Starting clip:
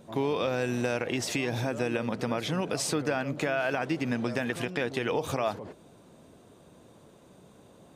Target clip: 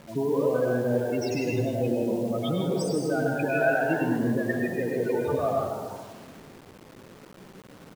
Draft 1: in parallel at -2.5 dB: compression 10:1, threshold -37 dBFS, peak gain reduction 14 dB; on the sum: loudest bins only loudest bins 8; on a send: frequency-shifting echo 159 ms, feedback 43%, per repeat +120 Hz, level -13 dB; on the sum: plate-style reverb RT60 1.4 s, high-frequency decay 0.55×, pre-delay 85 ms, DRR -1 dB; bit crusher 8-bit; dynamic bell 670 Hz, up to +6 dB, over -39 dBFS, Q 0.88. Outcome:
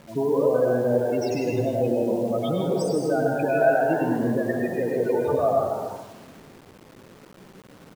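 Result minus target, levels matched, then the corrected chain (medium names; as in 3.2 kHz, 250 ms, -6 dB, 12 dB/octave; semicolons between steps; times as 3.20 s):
2 kHz band -4.5 dB
in parallel at -2.5 dB: compression 10:1, threshold -37 dBFS, peak gain reduction 14 dB; on the sum: loudest bins only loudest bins 8; on a send: frequency-shifting echo 159 ms, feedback 43%, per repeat +120 Hz, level -13 dB; on the sum: plate-style reverb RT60 1.4 s, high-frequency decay 0.55×, pre-delay 85 ms, DRR -1 dB; bit crusher 8-bit; dynamic bell 2.4 kHz, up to +6 dB, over -39 dBFS, Q 0.88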